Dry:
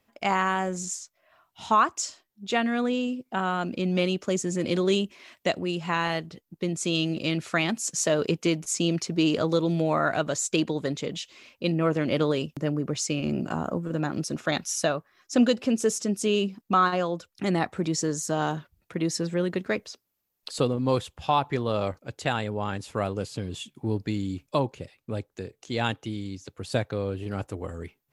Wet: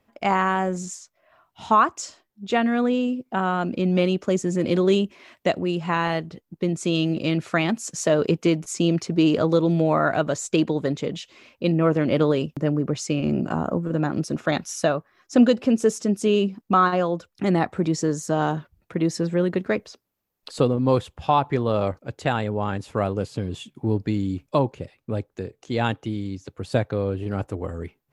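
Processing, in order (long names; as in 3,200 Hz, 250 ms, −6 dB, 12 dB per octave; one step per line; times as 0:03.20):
high-shelf EQ 2,300 Hz −9 dB
level +5 dB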